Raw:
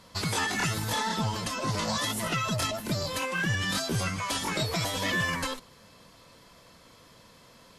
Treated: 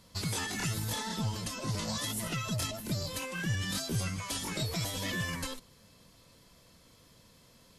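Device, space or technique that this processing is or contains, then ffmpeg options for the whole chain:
smiley-face EQ: -af "lowshelf=f=160:g=5.5,equalizer=f=1100:t=o:w=2:g=-5,highshelf=f=7500:g=6,volume=0.531"

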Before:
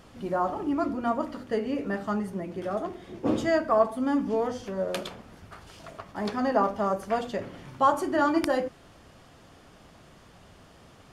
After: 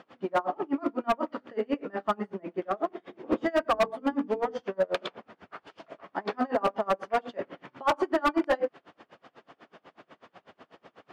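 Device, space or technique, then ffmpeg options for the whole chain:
helicopter radio: -filter_complex "[0:a]highpass=310,lowpass=2700,aeval=exprs='val(0)*pow(10,-31*(0.5-0.5*cos(2*PI*8.1*n/s))/20)':c=same,asoftclip=type=hard:threshold=0.0473,asettb=1/sr,asplit=3[s0][s1][s2];[s0]atrim=end=3.614[s3];[s1]atrim=start=3.61:end=4.59,asetpts=PTS-STARTPTS,afade=t=in:d=0.004:c=qsin,afade=t=out:st=0.976:d=0.004:c=qsin,bandreject=f=50:t=h:w=6,bandreject=f=100:t=h:w=6,bandreject=f=150:t=h:w=6,bandreject=f=200:t=h:w=6,bandreject=f=250:t=h:w=6,bandreject=f=300:t=h:w=6,bandreject=f=350:t=h:w=6,bandreject=f=400:t=h:w=6,bandreject=f=450:t=h:w=6[s4];[s2]atrim=start=4.586[s5];[s3][s4]acrossfade=d=0.004:c1=hsin:c2=qsin[s6];[s6][s5]acrossfade=d=0.004:c1=qsin:c2=hsin,volume=2.51"

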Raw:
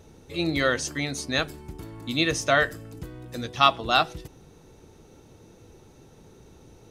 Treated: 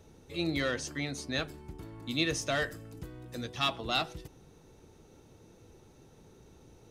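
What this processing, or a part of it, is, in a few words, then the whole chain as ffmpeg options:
one-band saturation: -filter_complex "[0:a]acrossover=split=450|2400[s0][s1][s2];[s1]asoftclip=type=tanh:threshold=0.0501[s3];[s0][s3][s2]amix=inputs=3:normalize=0,asettb=1/sr,asplit=3[s4][s5][s6];[s4]atrim=end=0.714[s7];[s5]atrim=start=0.71:end=2.07,asetpts=PTS-STARTPTS,afade=t=in:d=0.004:c=qsin,afade=t=out:st=1.356:d=0.004:c=qsin,highshelf=f=5300:g=-5.5[s8];[s6]atrim=start=2.066[s9];[s7][s8]acrossfade=d=0.004:c1=hsin:c2=qsin[s10];[s10][s9]acrossfade=d=0.004:c1=qsin:c2=hsin,volume=0.531"

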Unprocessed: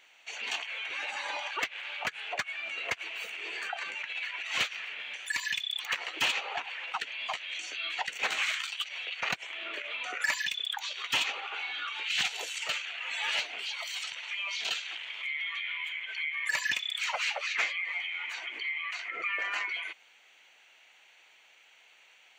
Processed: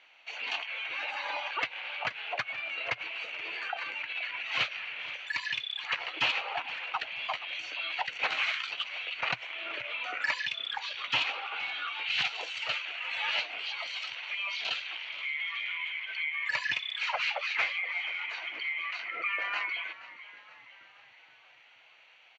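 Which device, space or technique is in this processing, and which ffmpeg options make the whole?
frequency-shifting delay pedal into a guitar cabinet: -filter_complex "[0:a]asplit=6[s0][s1][s2][s3][s4][s5];[s1]adelay=475,afreqshift=-70,volume=0.15[s6];[s2]adelay=950,afreqshift=-140,volume=0.0794[s7];[s3]adelay=1425,afreqshift=-210,volume=0.0422[s8];[s4]adelay=1900,afreqshift=-280,volume=0.0224[s9];[s5]adelay=2375,afreqshift=-350,volume=0.0117[s10];[s0][s6][s7][s8][s9][s10]amix=inputs=6:normalize=0,highpass=94,equalizer=f=120:t=q:w=4:g=6,equalizer=f=210:t=q:w=4:g=-9,equalizer=f=400:t=q:w=4:g=-7,equalizer=f=1800:t=q:w=4:g=-4,equalizer=f=3500:t=q:w=4:g=-4,lowpass=f=4400:w=0.5412,lowpass=f=4400:w=1.3066,volume=1.26"

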